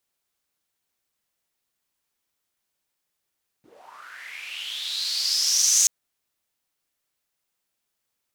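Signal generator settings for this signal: swept filtered noise white, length 2.23 s bandpass, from 220 Hz, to 6.5 kHz, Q 7, linear, gain ramp +25 dB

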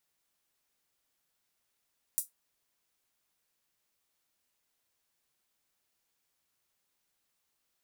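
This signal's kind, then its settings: closed hi-hat, high-pass 8.7 kHz, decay 0.15 s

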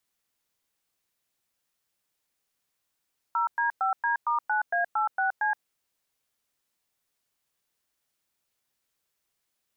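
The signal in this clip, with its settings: DTMF "0D5D*9A86C", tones 122 ms, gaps 107 ms, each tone -25.5 dBFS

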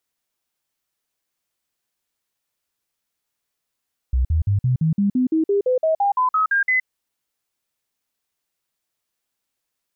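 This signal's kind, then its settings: stepped sine 63.3 Hz up, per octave 3, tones 16, 0.12 s, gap 0.05 s -15 dBFS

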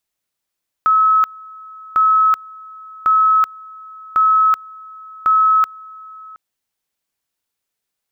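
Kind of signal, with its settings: two-level tone 1.29 kHz -9.5 dBFS, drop 24 dB, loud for 0.38 s, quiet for 0.72 s, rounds 5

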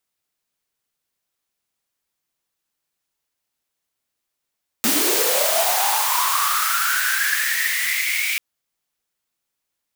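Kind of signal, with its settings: swept filtered noise white, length 3.54 s highpass, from 220 Hz, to 2.3 kHz, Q 11, linear, gain ramp -8 dB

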